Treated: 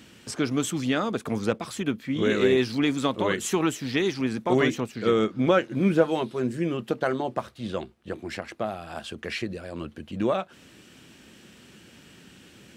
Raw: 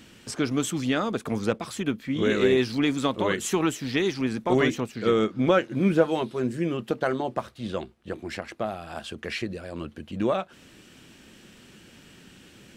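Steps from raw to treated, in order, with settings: HPF 54 Hz

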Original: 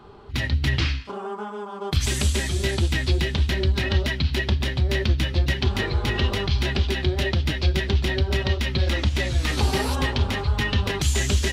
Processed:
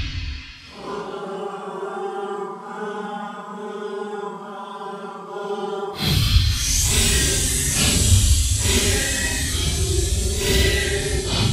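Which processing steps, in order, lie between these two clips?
high shelf 4700 Hz +9.5 dB; Paulstretch 6.2×, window 0.05 s, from 0.95; gain +2.5 dB

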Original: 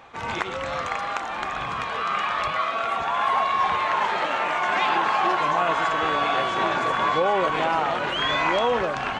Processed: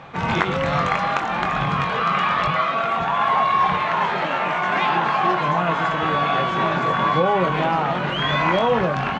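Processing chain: bell 160 Hz +14 dB 0.72 oct; vocal rider within 4 dB 2 s; air absorption 90 m; doubler 22 ms -8 dB; gain +2.5 dB

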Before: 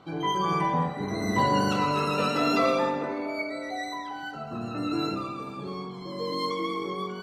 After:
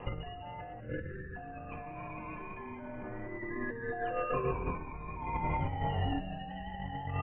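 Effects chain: Chebyshev low-pass 3200 Hz, order 8; frequency shift -280 Hz; low shelf 130 Hz -4 dB; limiter -25.5 dBFS, peak gain reduction 11.5 dB; negative-ratio compressor -40 dBFS, ratio -0.5; spectral delete 0.79–1.35, 540–1300 Hz; frequency-shifting echo 0.194 s, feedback 30%, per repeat -120 Hz, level -11 dB; gain +3.5 dB

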